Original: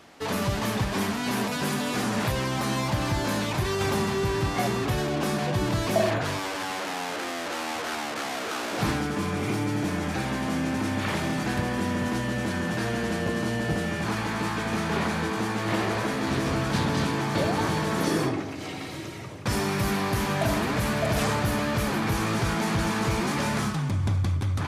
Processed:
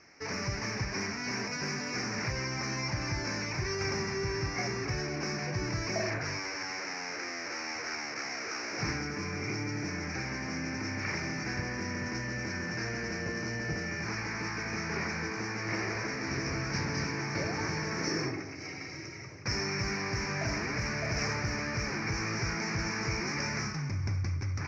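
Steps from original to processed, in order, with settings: EQ curve 150 Hz 0 dB, 210 Hz -5 dB, 380 Hz 0 dB, 640 Hz -5 dB, 1100 Hz -3 dB, 2300 Hz +8 dB, 3400 Hz -23 dB, 5500 Hz +15 dB, 8500 Hz -28 dB; gain -7 dB

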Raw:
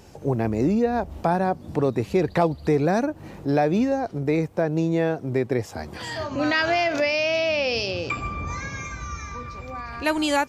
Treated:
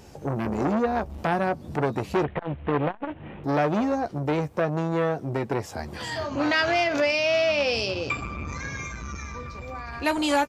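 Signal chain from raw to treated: 2.24–3.44 CVSD 16 kbps; doubler 14 ms -10 dB; core saturation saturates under 990 Hz

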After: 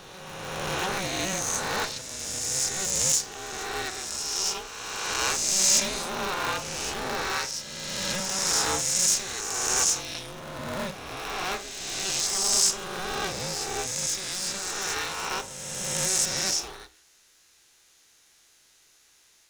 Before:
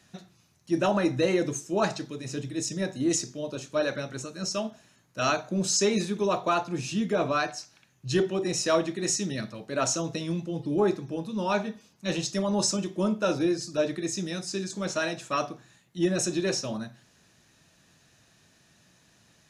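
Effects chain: spectral swells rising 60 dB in 2.18 s; tilt +3.5 dB/oct; polarity switched at an audio rate 190 Hz; gain -7.5 dB

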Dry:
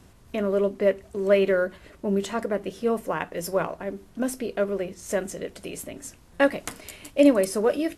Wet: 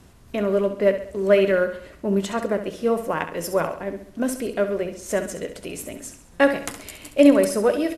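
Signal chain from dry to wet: added harmonics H 7 -38 dB, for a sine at -6 dBFS; on a send: feedback echo 67 ms, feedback 46%, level -10 dB; on the sum: gain +3 dB

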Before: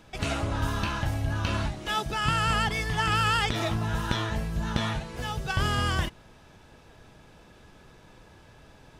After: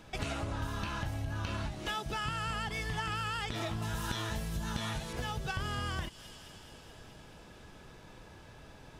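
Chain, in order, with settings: thin delay 0.213 s, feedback 73%, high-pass 3900 Hz, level -14 dB; compressor, threshold -33 dBFS, peak gain reduction 12 dB; 3.82–5.13 high shelf 5700 Hz +12 dB

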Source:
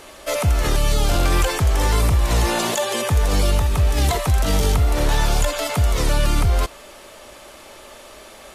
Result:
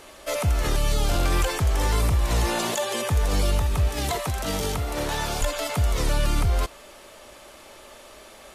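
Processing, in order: 3.88–5.42 HPF 140 Hz 6 dB/oct; gain -4.5 dB

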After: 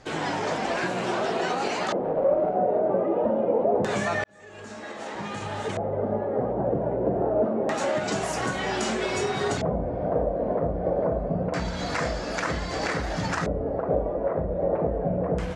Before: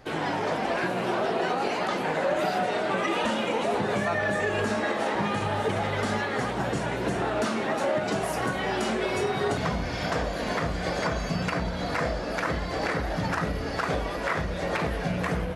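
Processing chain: 1.98–2.55 self-modulated delay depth 0.31 ms; LFO low-pass square 0.26 Hz 580–7300 Hz; 4.24–6.43 fade in

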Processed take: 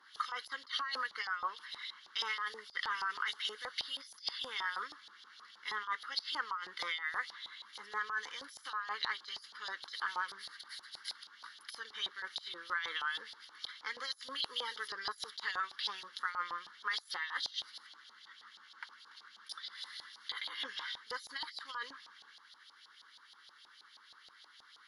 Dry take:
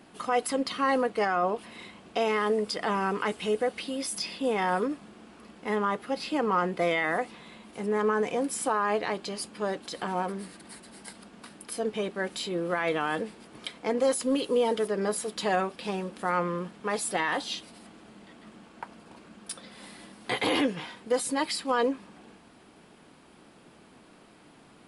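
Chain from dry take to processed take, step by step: differentiator; fixed phaser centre 2500 Hz, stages 6; negative-ratio compressor -49 dBFS, ratio -1; LFO band-pass saw up 6.3 Hz 800–4200 Hz; gain +16.5 dB

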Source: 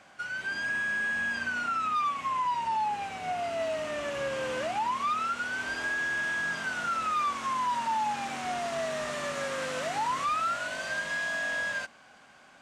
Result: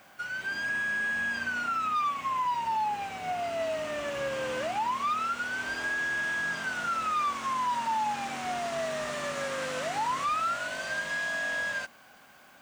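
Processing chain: added noise violet -66 dBFS

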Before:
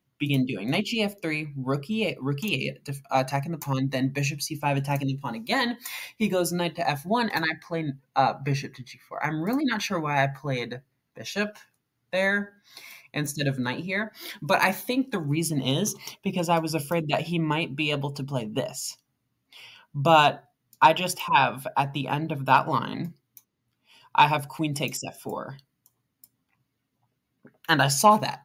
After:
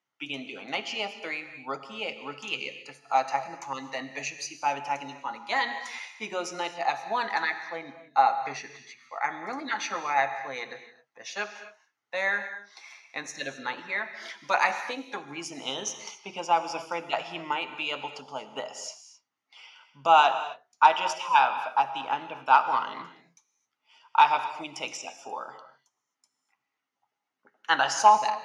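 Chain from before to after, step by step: speaker cabinet 410–7500 Hz, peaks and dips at 830 Hz +10 dB, 1300 Hz +9 dB, 2000 Hz +7 dB, 3000 Hz +4 dB, 6000 Hz +7 dB; non-linear reverb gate 0.29 s flat, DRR 9.5 dB; gain -7.5 dB

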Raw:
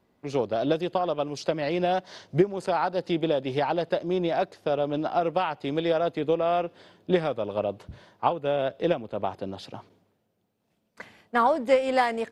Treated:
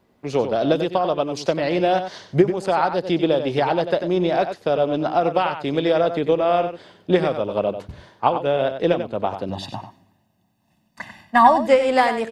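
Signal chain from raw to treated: 9.49–11.67 comb 1.1 ms, depth 93%; outdoor echo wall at 16 m, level -9 dB; gain +5.5 dB

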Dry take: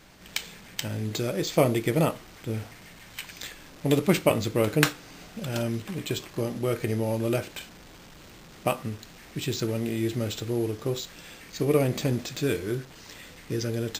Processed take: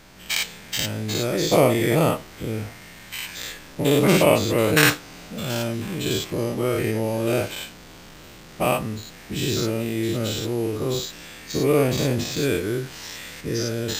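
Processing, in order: spectral dilation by 0.12 s; 11.5–13.41 mismatched tape noise reduction encoder only

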